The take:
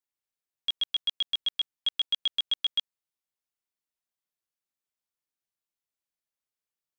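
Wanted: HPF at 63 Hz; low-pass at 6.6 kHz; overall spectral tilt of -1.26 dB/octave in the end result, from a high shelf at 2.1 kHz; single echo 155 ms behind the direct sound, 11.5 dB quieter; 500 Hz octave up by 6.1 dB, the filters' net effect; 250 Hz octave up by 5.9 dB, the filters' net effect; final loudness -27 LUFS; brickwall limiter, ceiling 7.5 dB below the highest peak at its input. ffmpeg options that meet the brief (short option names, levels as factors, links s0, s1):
-af "highpass=63,lowpass=6600,equalizer=f=250:t=o:g=5.5,equalizer=f=500:t=o:g=6.5,highshelf=f=2100:g=-6,alimiter=level_in=2:limit=0.0631:level=0:latency=1,volume=0.501,aecho=1:1:155:0.266,volume=3.76"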